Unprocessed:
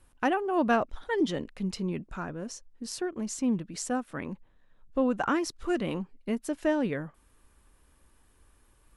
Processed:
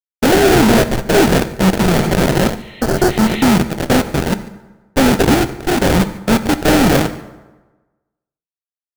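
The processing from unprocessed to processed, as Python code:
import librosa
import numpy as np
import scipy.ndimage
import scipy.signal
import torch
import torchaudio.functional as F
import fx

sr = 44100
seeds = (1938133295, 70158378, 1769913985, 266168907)

p1 = fx.envelope_flatten(x, sr, power=0.3)
p2 = fx.lowpass(p1, sr, hz=6500.0, slope=24, at=(3.12, 4.26))
p3 = fx.fuzz(p2, sr, gain_db=41.0, gate_db=-39.0)
p4 = fx.sample_hold(p3, sr, seeds[0], rate_hz=1100.0, jitter_pct=20)
p5 = p4 + fx.echo_single(p4, sr, ms=144, db=-22.5, dry=0)
p6 = fx.spec_repair(p5, sr, seeds[1], start_s=2.61, length_s=0.83, low_hz=1800.0, high_hz=4200.0, source='both')
p7 = fx.level_steps(p6, sr, step_db=18, at=(5.34, 5.84))
p8 = fx.rev_fdn(p7, sr, rt60_s=1.2, lf_ratio=0.95, hf_ratio=0.65, size_ms=45.0, drr_db=10.0)
p9 = fx.env_flatten(p8, sr, amount_pct=70, at=(1.88, 2.5))
y = p9 * 10.0 ** (4.5 / 20.0)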